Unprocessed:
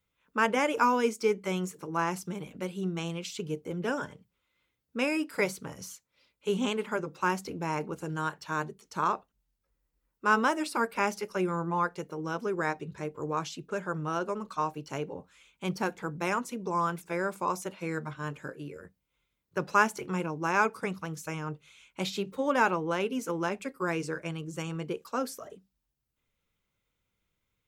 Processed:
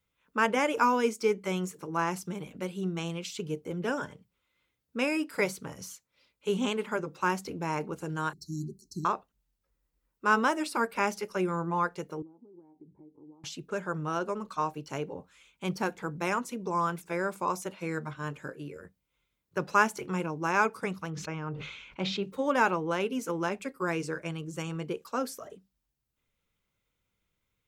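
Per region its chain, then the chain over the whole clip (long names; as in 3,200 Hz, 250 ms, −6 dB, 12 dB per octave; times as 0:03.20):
0:08.33–0:09.05: linear-phase brick-wall band-stop 410–3,900 Hz + low-shelf EQ 210 Hz +7 dB
0:12.22–0:13.44: downward compressor 12 to 1, threshold −41 dBFS + formant resonators in series u
0:21.10–0:22.23: high-frequency loss of the air 200 metres + level that may fall only so fast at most 44 dB per second
whole clip: no processing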